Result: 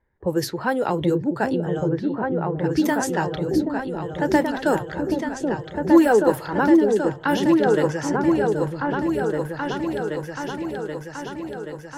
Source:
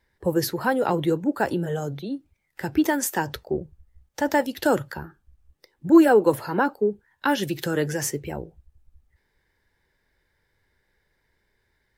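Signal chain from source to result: level-controlled noise filter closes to 1.3 kHz, open at -17 dBFS; delay with an opening low-pass 779 ms, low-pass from 400 Hz, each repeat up 2 oct, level 0 dB

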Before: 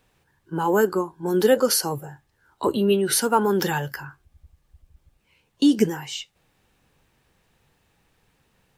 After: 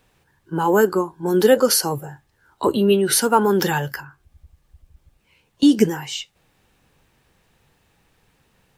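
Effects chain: 4.00–5.63 s: compression 2.5:1, threshold -44 dBFS, peak gain reduction 11.5 dB; trim +3.5 dB

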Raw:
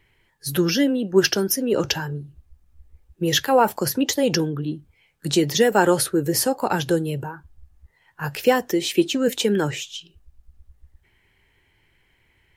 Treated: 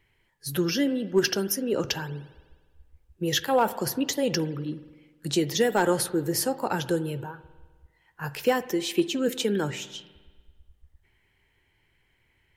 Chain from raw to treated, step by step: overload inside the chain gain 7.5 dB; spring tank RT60 1.4 s, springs 50 ms, chirp 40 ms, DRR 15 dB; trim -5.5 dB

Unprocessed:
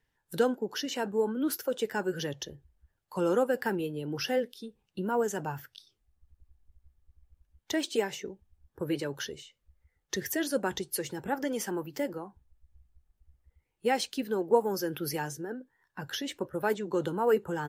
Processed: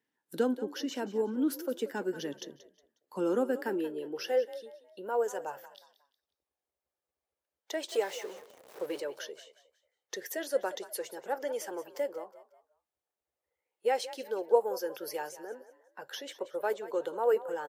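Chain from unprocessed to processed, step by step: 7.89–9.00 s: jump at every zero crossing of -38 dBFS; high-pass sweep 260 Hz -> 520 Hz, 3.48–4.43 s; frequency-shifting echo 181 ms, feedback 34%, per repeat +40 Hz, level -15.5 dB; trim -6 dB

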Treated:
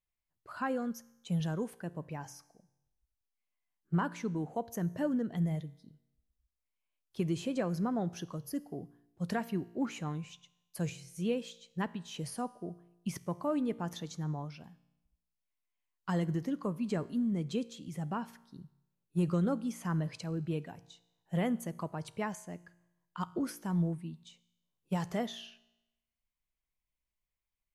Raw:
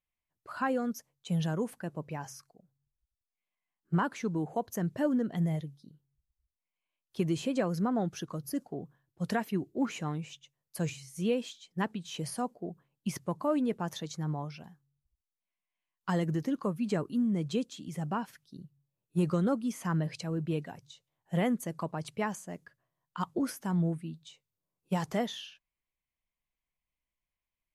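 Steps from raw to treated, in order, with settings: bass shelf 93 Hz +7 dB; feedback comb 58 Hz, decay 0.93 s, harmonics all, mix 40%

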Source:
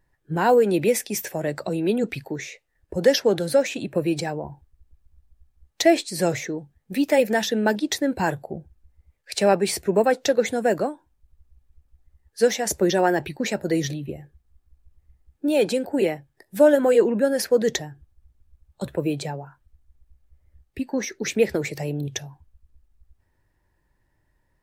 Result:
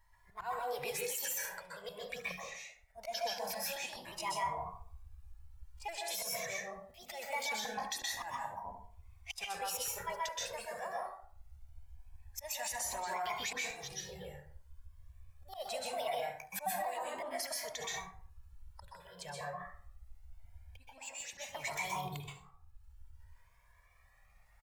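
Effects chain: pitch shift switched off and on +4 st, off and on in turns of 196 ms; peaking EQ 830 Hz +11.5 dB 1.4 oct; on a send: delay 70 ms -20.5 dB; on the sum: slow attack 780 ms; compression 6:1, threshold -25 dBFS, peak gain reduction 12 dB; amplifier tone stack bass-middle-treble 10-0-10; plate-style reverb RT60 0.53 s, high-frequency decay 0.55×, pre-delay 115 ms, DRR -3.5 dB; peak limiter -31 dBFS, peak gain reduction 11.5 dB; Shepard-style flanger rising 0.23 Hz; trim +7 dB

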